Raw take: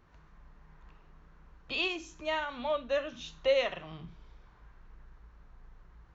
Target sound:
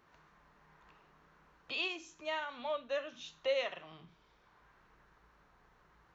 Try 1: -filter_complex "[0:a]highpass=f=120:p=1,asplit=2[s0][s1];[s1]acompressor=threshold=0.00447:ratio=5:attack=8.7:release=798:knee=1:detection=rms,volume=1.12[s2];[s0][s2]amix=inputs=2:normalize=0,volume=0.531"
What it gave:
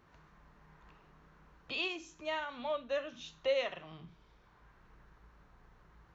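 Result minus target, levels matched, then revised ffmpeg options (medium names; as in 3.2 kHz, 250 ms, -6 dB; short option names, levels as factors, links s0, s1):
125 Hz band +6.0 dB
-filter_complex "[0:a]highpass=f=400:p=1,asplit=2[s0][s1];[s1]acompressor=threshold=0.00447:ratio=5:attack=8.7:release=798:knee=1:detection=rms,volume=1.12[s2];[s0][s2]amix=inputs=2:normalize=0,volume=0.531"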